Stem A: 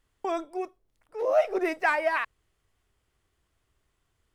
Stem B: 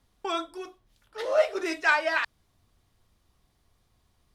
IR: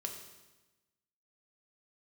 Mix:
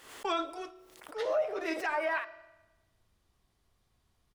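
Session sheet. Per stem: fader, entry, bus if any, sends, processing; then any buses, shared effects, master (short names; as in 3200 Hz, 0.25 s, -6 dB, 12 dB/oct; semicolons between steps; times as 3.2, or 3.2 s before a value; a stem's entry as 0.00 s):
-9.5 dB, 0.00 s, no send, HPF 370 Hz 12 dB/oct; backwards sustainer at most 72 dB/s
-5.0 dB, 2.4 ms, polarity flipped, send -11 dB, sample leveller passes 1; treble ducked by the level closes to 590 Hz, closed at -13 dBFS; ending taper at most 560 dB/s; auto duck -7 dB, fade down 1.80 s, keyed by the first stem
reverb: on, RT60 1.1 s, pre-delay 3 ms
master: limiter -22 dBFS, peak gain reduction 7.5 dB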